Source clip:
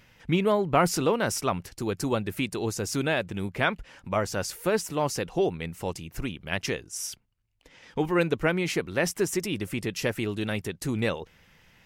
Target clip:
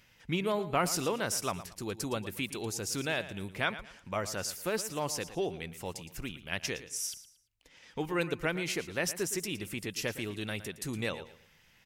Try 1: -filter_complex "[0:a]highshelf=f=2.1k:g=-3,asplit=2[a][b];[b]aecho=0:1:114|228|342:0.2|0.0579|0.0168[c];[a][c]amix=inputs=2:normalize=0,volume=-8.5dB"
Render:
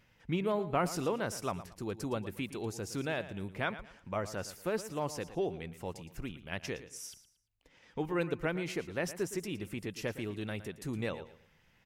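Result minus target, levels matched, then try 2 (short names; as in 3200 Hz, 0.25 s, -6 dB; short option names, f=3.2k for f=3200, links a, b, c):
4000 Hz band -5.5 dB
-filter_complex "[0:a]highshelf=f=2.1k:g=7.5,asplit=2[a][b];[b]aecho=0:1:114|228|342:0.2|0.0579|0.0168[c];[a][c]amix=inputs=2:normalize=0,volume=-8.5dB"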